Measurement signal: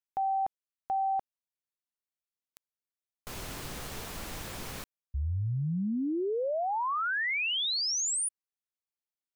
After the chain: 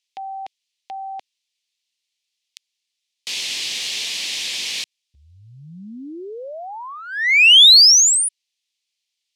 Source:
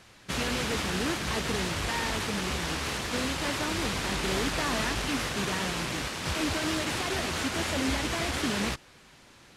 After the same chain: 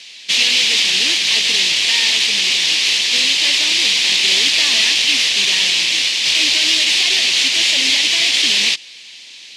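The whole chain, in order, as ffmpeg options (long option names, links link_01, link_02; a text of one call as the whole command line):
ffmpeg -i in.wav -af "highpass=230,lowpass=4000,aexciter=amount=11:drive=9.2:freq=2200,volume=-1.5dB" out.wav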